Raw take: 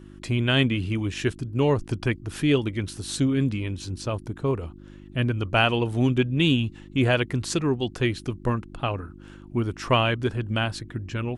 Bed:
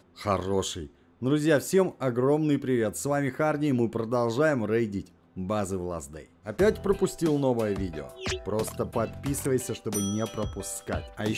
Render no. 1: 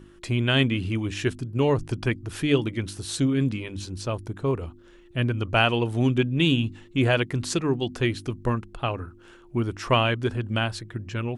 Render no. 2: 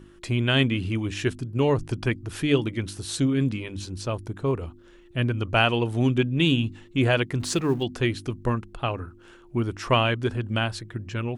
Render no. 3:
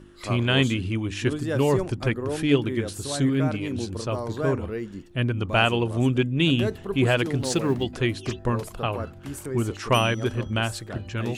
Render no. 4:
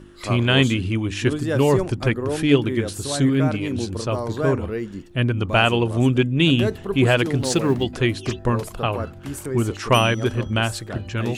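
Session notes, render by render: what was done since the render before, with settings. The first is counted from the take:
de-hum 50 Hz, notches 6
7.4–7.83 G.711 law mismatch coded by mu
add bed -6 dB
gain +4 dB; limiter -3 dBFS, peak gain reduction 2 dB

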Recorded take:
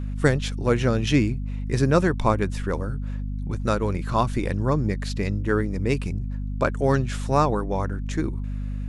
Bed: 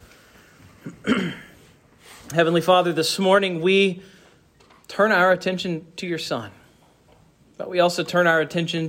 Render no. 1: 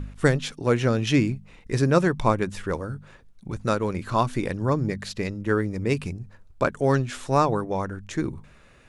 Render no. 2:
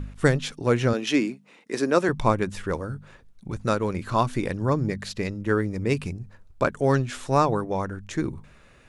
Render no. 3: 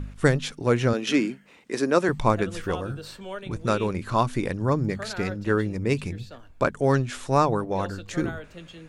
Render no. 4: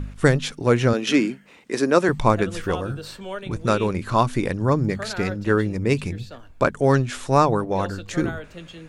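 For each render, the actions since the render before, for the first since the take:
de-hum 50 Hz, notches 5
0.93–2.09 HPF 230 Hz 24 dB/oct
add bed -19.5 dB
gain +3.5 dB; limiter -3 dBFS, peak gain reduction 1 dB

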